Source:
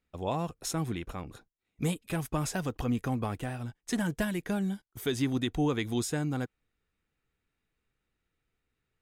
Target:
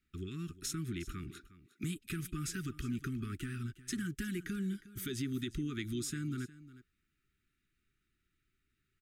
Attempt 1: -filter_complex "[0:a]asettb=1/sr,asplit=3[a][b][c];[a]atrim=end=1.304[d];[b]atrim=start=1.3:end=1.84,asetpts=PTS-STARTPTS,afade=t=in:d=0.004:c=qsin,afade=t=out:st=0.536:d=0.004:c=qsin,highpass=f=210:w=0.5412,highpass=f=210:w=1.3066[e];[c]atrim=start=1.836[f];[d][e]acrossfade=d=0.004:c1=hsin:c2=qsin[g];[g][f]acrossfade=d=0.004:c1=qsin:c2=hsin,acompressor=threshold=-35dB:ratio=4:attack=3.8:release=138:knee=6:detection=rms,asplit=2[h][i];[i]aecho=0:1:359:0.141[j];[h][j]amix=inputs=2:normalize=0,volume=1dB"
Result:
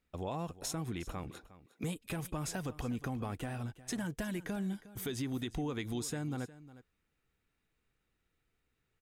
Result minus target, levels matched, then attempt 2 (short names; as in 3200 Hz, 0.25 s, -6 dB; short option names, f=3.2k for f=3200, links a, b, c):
500 Hz band +5.0 dB
-filter_complex "[0:a]asettb=1/sr,asplit=3[a][b][c];[a]atrim=end=1.304[d];[b]atrim=start=1.3:end=1.84,asetpts=PTS-STARTPTS,afade=t=in:d=0.004:c=qsin,afade=t=out:st=0.536:d=0.004:c=qsin,highpass=f=210:w=0.5412,highpass=f=210:w=1.3066[e];[c]atrim=start=1.836[f];[d][e]acrossfade=d=0.004:c1=hsin:c2=qsin[g];[g][f]acrossfade=d=0.004:c1=qsin:c2=hsin,acompressor=threshold=-35dB:ratio=4:attack=3.8:release=138:knee=6:detection=rms,asuperstop=centerf=700:order=20:qfactor=0.88,asplit=2[h][i];[i]aecho=0:1:359:0.141[j];[h][j]amix=inputs=2:normalize=0,volume=1dB"